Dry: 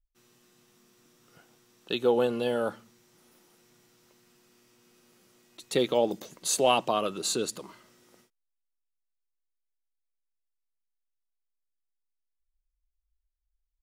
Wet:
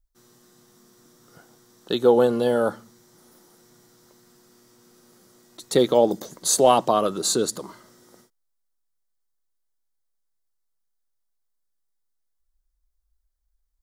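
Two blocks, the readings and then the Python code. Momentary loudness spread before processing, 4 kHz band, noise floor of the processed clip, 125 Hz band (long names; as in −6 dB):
10 LU, +3.0 dB, −74 dBFS, +7.5 dB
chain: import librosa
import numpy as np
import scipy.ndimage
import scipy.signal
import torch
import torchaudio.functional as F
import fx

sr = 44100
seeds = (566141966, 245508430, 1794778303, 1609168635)

y = fx.peak_eq(x, sr, hz=2600.0, db=-13.5, octaves=0.55)
y = y * librosa.db_to_amplitude(7.5)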